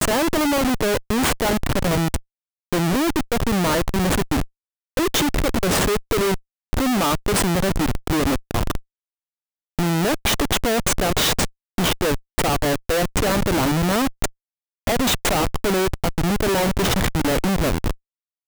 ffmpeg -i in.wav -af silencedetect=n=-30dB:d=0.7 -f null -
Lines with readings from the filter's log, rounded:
silence_start: 8.78
silence_end: 9.79 | silence_duration: 1.00